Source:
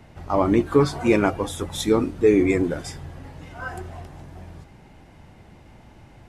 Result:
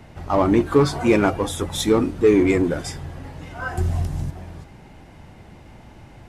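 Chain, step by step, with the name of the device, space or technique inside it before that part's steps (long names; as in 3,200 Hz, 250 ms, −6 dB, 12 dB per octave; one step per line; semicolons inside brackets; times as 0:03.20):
parallel distortion (in parallel at −5 dB: hard clipping −23 dBFS, distortion −5 dB)
0:03.78–0:04.31: on the sum: bass and treble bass +13 dB, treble +10 dB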